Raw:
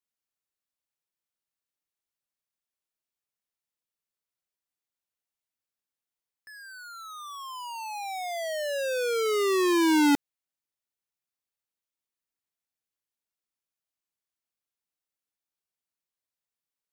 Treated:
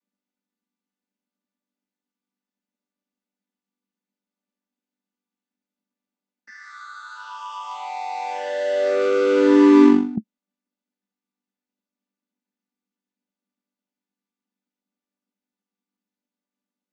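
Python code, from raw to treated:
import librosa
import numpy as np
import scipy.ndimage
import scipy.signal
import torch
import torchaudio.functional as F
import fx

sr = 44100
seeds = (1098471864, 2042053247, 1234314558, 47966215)

y = fx.chord_vocoder(x, sr, chord='major triad', root=55)
y = fx.peak_eq(y, sr, hz=220.0, db=14.0, octaves=0.51)
y = fx.over_compress(y, sr, threshold_db=-20.0, ratio=-0.5)
y = F.gain(torch.from_numpy(y), 7.0).numpy()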